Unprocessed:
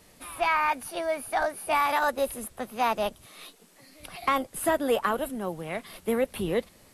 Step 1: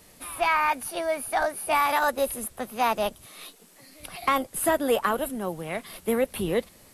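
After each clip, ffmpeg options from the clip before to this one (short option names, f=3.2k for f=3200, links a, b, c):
-af "highshelf=f=8.8k:g=6,volume=1.5dB"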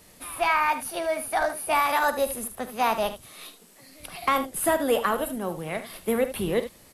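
-af "aecho=1:1:45|75:0.188|0.251"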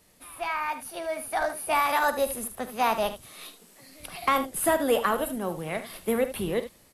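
-af "dynaudnorm=f=490:g=5:m=9dB,volume=-8dB"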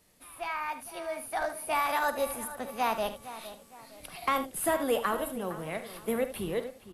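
-filter_complex "[0:a]asplit=2[a][b];[b]adelay=461,lowpass=f=3.2k:p=1,volume=-14dB,asplit=2[c][d];[d]adelay=461,lowpass=f=3.2k:p=1,volume=0.39,asplit=2[e][f];[f]adelay=461,lowpass=f=3.2k:p=1,volume=0.39,asplit=2[g][h];[h]adelay=461,lowpass=f=3.2k:p=1,volume=0.39[i];[a][c][e][g][i]amix=inputs=5:normalize=0,volume=-4.5dB"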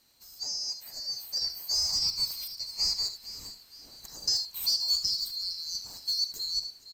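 -af "afftfilt=real='real(if(lt(b,736),b+184*(1-2*mod(floor(b/184),2)),b),0)':imag='imag(if(lt(b,736),b+184*(1-2*mod(floor(b/184),2)),b),0)':win_size=2048:overlap=0.75,lowshelf=f=110:g=12,aresample=32000,aresample=44100"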